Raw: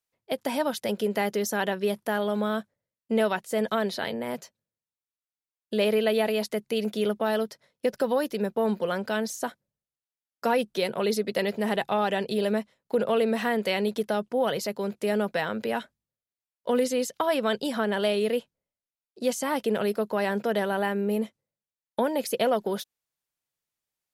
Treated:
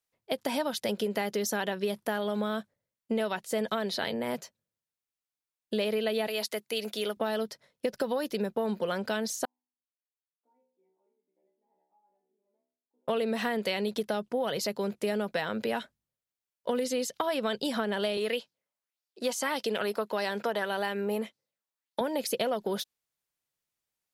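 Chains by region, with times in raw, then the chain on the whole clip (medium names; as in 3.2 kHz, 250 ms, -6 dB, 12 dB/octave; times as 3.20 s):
6.27–7.17 s: high-pass 670 Hz 6 dB/octave + treble shelf 11 kHz +5 dB
9.45–13.08 s: cascade formant filter u + differentiator + inharmonic resonator 61 Hz, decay 0.69 s, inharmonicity 0.002
18.17–22.01 s: high-pass 330 Hz 6 dB/octave + sweeping bell 1.7 Hz 900–5200 Hz +9 dB
whole clip: dynamic bell 4.2 kHz, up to +4 dB, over -46 dBFS, Q 1.2; compression, threshold -26 dBFS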